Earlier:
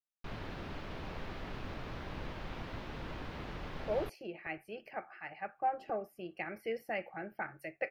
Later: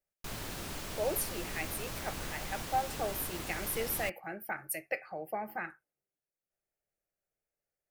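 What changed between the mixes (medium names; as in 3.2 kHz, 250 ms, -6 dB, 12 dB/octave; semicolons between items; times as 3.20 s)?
speech: entry -2.90 s; master: remove distance through air 310 m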